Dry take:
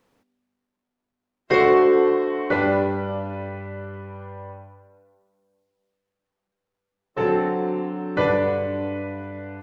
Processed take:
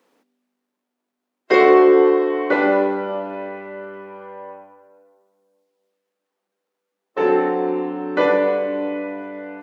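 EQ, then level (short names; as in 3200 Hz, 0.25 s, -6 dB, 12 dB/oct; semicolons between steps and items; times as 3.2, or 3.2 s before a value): HPF 250 Hz 24 dB/oct; low shelf 360 Hz +3 dB; +3.0 dB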